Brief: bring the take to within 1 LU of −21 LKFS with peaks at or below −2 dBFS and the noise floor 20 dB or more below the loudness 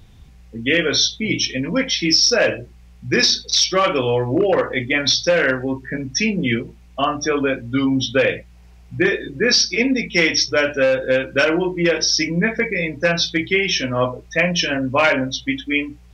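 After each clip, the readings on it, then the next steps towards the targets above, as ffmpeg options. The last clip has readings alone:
integrated loudness −18.0 LKFS; sample peak −2.0 dBFS; target loudness −21.0 LKFS
→ -af "volume=-3dB"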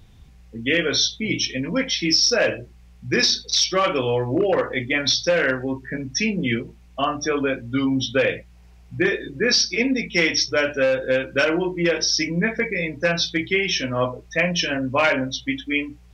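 integrated loudness −21.0 LKFS; sample peak −5.0 dBFS; background noise floor −49 dBFS

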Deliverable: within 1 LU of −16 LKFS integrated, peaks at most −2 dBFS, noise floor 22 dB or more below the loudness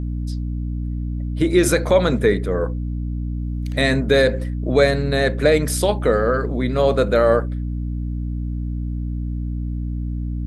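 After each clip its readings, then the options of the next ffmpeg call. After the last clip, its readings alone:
mains hum 60 Hz; hum harmonics up to 300 Hz; level of the hum −22 dBFS; integrated loudness −20.5 LKFS; sample peak −3.0 dBFS; target loudness −16.0 LKFS
→ -af "bandreject=frequency=60:width_type=h:width=6,bandreject=frequency=120:width_type=h:width=6,bandreject=frequency=180:width_type=h:width=6,bandreject=frequency=240:width_type=h:width=6,bandreject=frequency=300:width_type=h:width=6"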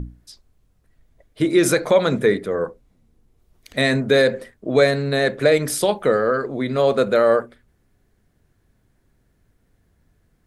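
mains hum none found; integrated loudness −19.0 LKFS; sample peak −3.5 dBFS; target loudness −16.0 LKFS
→ -af "volume=3dB,alimiter=limit=-2dB:level=0:latency=1"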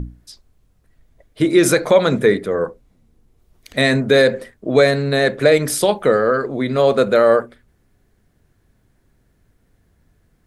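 integrated loudness −16.0 LKFS; sample peak −2.0 dBFS; background noise floor −61 dBFS

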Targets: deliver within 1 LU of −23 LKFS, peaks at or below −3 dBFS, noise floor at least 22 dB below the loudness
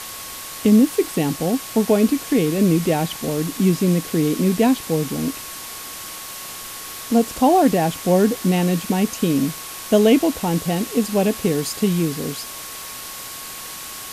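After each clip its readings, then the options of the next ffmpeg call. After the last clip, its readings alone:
interfering tone 1,100 Hz; level of the tone −42 dBFS; background noise floor −34 dBFS; target noise floor −42 dBFS; integrated loudness −19.5 LKFS; sample peak −4.5 dBFS; target loudness −23.0 LKFS
→ -af "bandreject=frequency=1100:width=30"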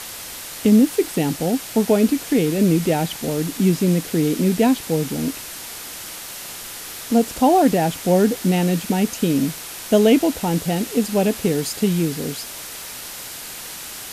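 interfering tone none found; background noise floor −34 dBFS; target noise floor −42 dBFS
→ -af "afftdn=noise_reduction=8:noise_floor=-34"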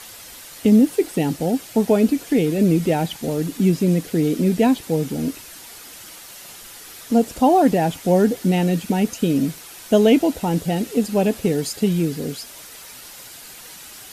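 background noise floor −40 dBFS; target noise floor −42 dBFS
→ -af "afftdn=noise_reduction=6:noise_floor=-40"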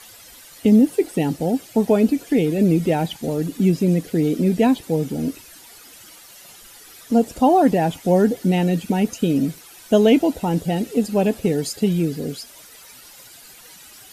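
background noise floor −45 dBFS; integrated loudness −19.5 LKFS; sample peak −5.0 dBFS; target loudness −23.0 LKFS
→ -af "volume=-3.5dB"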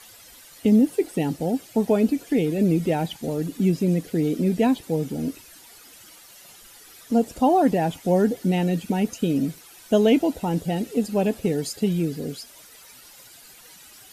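integrated loudness −23.0 LKFS; sample peak −8.5 dBFS; background noise floor −48 dBFS

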